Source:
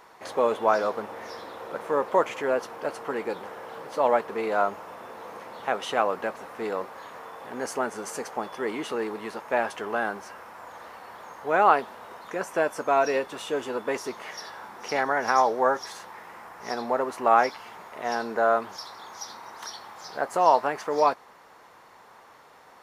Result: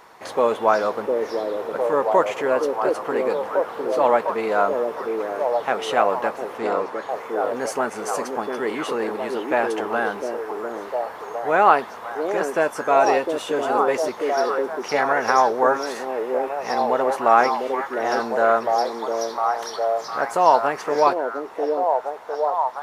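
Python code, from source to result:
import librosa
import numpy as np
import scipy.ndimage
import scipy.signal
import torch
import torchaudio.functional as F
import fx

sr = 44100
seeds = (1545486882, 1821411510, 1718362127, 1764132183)

y = fx.lowpass(x, sr, hz=9800.0, slope=12, at=(6.58, 7.09))
y = fx.echo_stepped(y, sr, ms=705, hz=370.0, octaves=0.7, feedback_pct=70, wet_db=0)
y = y * 10.0 ** (4.0 / 20.0)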